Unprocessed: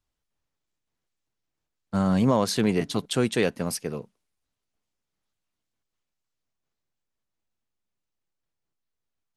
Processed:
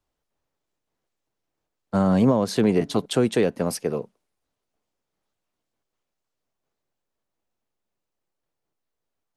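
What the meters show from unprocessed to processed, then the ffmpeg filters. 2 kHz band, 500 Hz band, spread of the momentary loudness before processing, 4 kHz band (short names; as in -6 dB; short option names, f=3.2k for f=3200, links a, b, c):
-1.5 dB, +4.0 dB, 10 LU, -1.5 dB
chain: -filter_complex "[0:a]equalizer=f=550:w=0.55:g=8.5,acrossover=split=300[a][b];[b]acompressor=threshold=-21dB:ratio=6[c];[a][c]amix=inputs=2:normalize=0"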